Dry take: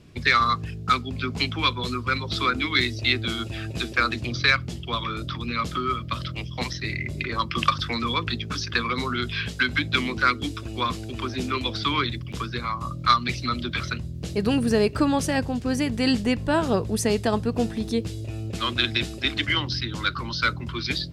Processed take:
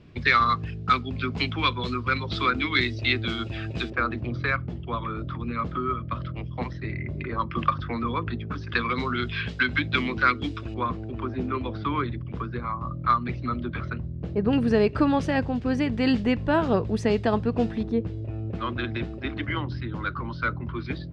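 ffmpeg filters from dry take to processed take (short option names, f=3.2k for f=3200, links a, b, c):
-af "asetnsamples=n=441:p=0,asendcmd='3.9 lowpass f 1400;8.69 lowpass f 3000;10.74 lowpass f 1300;14.53 lowpass f 2900;17.83 lowpass f 1400',lowpass=3.4k"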